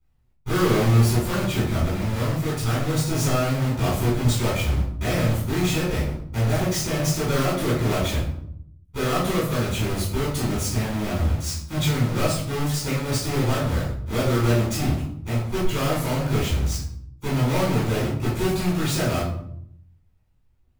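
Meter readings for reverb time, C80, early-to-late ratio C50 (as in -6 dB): 0.70 s, 7.0 dB, 2.5 dB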